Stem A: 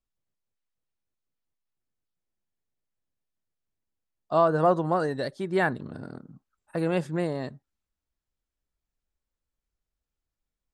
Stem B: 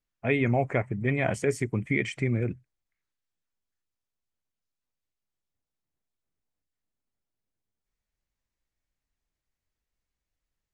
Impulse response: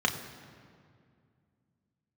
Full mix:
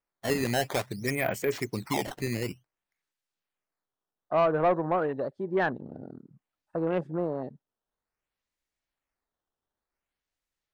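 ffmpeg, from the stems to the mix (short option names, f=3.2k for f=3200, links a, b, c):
-filter_complex "[0:a]afwtdn=0.0158,lowpass=f=1.6k:p=1,volume=2dB[a];[1:a]acrusher=samples=11:mix=1:aa=0.000001:lfo=1:lforange=17.6:lforate=0.55,volume=1dB[b];[a][b]amix=inputs=2:normalize=0,lowshelf=f=190:g=-11.5,asoftclip=type=tanh:threshold=-16dB"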